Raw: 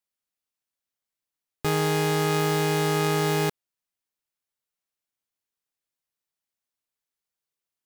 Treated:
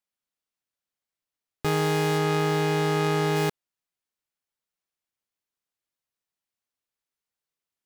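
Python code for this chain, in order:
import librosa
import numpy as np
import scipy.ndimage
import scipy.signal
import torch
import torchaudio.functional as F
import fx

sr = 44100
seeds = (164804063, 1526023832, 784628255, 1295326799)

y = fx.high_shelf(x, sr, hz=6700.0, db=fx.steps((0.0, -5.5), (2.17, -11.5), (3.35, -4.5)))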